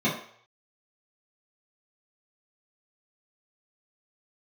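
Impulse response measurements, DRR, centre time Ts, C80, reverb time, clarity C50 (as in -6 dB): -9.5 dB, 33 ms, 10.0 dB, 0.60 s, 6.0 dB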